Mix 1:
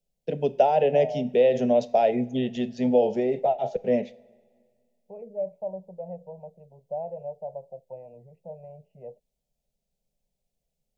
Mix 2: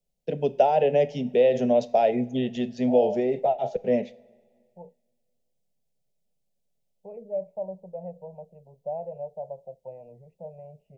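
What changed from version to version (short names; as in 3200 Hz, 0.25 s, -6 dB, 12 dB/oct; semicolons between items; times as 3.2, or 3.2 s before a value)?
second voice: entry +1.95 s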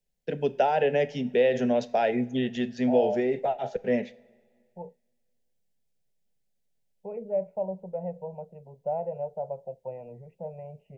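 second voice +7.0 dB; master: add fifteen-band EQ 160 Hz -3 dB, 630 Hz -6 dB, 1600 Hz +11 dB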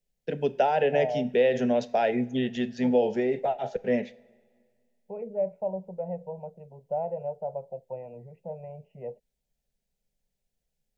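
second voice: entry -1.95 s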